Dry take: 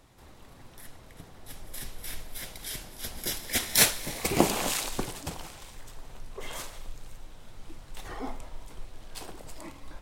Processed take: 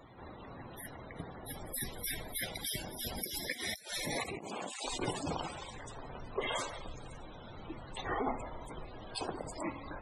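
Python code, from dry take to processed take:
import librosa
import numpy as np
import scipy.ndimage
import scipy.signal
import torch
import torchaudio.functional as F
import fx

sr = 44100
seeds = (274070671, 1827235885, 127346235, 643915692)

y = fx.highpass(x, sr, hz=130.0, slope=6)
y = fx.over_compress(y, sr, threshold_db=-38.0, ratio=-1.0)
y = fx.spec_topn(y, sr, count=64)
y = F.gain(torch.from_numpy(y), 2.0).numpy()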